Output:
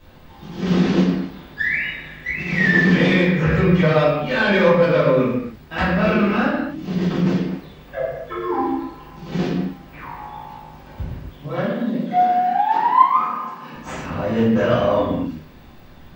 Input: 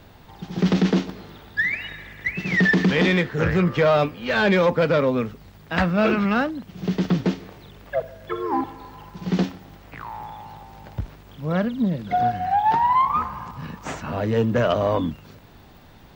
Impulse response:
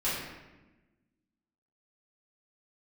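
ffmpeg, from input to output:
-filter_complex "[0:a]asettb=1/sr,asplit=3[s0][s1][s2];[s0]atrim=end=11.464[s3];[s1]atrim=start=11.46:end=13.75,asetpts=PTS-STARTPTS,afade=t=in:d=0.004:c=qsin,afade=t=out:st=2.286:d=0.004:c=qsin,highpass=f=220:w=0.5412,highpass=f=220:w=1.3066[s4];[s2]atrim=start=13.746[s5];[s3][s4]acrossfade=d=0.004:c1=hsin:c2=qsin[s6];[s6][s5]acrossfade=d=0.004:c1=qsin:c2=hsin[s7];[1:a]atrim=start_sample=2205,afade=t=out:st=0.35:d=0.01,atrim=end_sample=15876[s8];[s7][s8]afir=irnorm=-1:irlink=0,volume=0.501"

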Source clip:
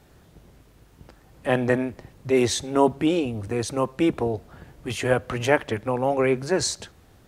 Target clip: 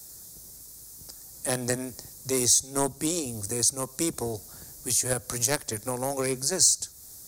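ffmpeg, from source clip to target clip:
-filter_complex "[0:a]aeval=exprs='0.708*(cos(1*acos(clip(val(0)/0.708,-1,1)))-cos(1*PI/2))+0.1*(cos(3*acos(clip(val(0)/0.708,-1,1)))-cos(3*PI/2))+0.0158*(cos(7*acos(clip(val(0)/0.708,-1,1)))-cos(7*PI/2))':c=same,aexciter=amount=9.5:drive=9.9:freq=4600,acrossover=split=140[s0][s1];[s1]acompressor=threshold=0.0355:ratio=2[s2];[s0][s2]amix=inputs=2:normalize=0,volume=1.19"

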